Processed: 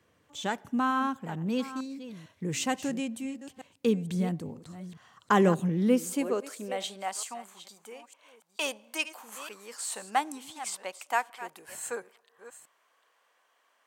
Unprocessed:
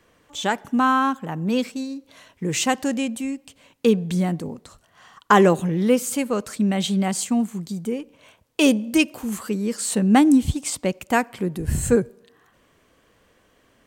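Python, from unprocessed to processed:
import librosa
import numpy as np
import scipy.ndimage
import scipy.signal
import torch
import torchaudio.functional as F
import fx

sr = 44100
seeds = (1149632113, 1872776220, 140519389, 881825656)

y = fx.reverse_delay(x, sr, ms=452, wet_db=-13.5)
y = fx.filter_sweep_highpass(y, sr, from_hz=92.0, to_hz=870.0, start_s=5.09, end_s=7.21, q=1.7)
y = y * 10.0 ** (-9.0 / 20.0)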